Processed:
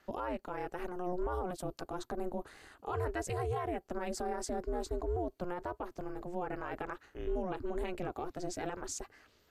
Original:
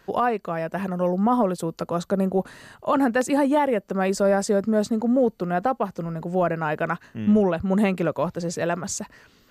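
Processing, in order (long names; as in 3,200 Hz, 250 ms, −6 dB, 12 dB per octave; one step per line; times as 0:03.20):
high-pass filter 77 Hz
brickwall limiter −18 dBFS, peak gain reduction 7.5 dB
ring modulation 180 Hz
level −7.5 dB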